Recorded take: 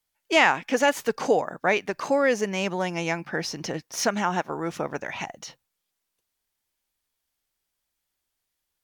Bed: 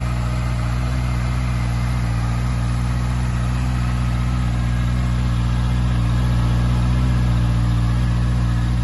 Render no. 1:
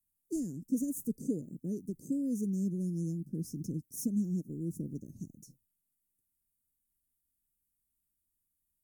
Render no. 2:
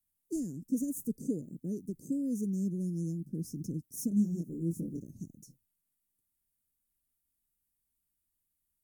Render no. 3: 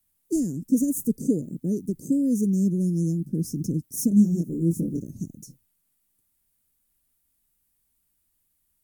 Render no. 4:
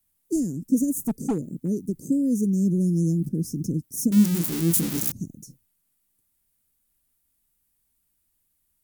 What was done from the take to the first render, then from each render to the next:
inverse Chebyshev band-stop filter 770–3,500 Hz, stop band 60 dB
0:04.09–0:05.03: double-tracking delay 24 ms −3 dB
level +10.5 dB
0:01.03–0:01.68: hard clipping −19.5 dBFS; 0:02.65–0:03.29: envelope flattener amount 50%; 0:04.12–0:05.12: spike at every zero crossing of −15.5 dBFS

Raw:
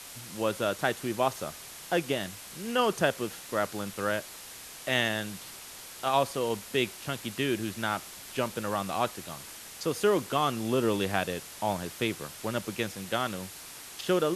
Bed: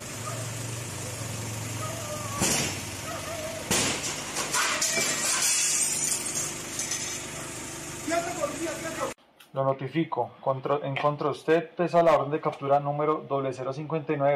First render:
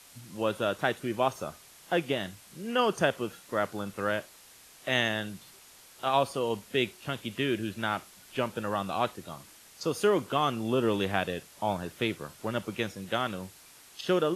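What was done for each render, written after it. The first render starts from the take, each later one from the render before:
noise reduction from a noise print 9 dB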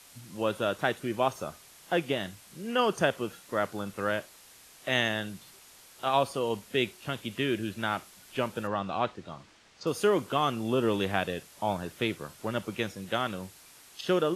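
0:08.67–0:09.87: high-frequency loss of the air 120 metres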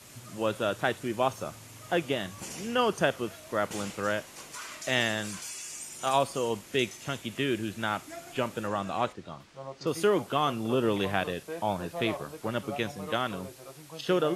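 mix in bed −16 dB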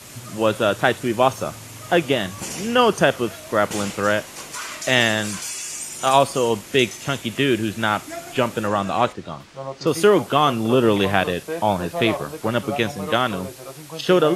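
level +10 dB
brickwall limiter −1 dBFS, peak gain reduction 2 dB

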